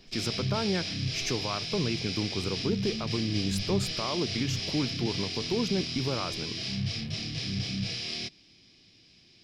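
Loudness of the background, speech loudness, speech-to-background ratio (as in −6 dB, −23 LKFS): −32.5 LKFS, −33.0 LKFS, −0.5 dB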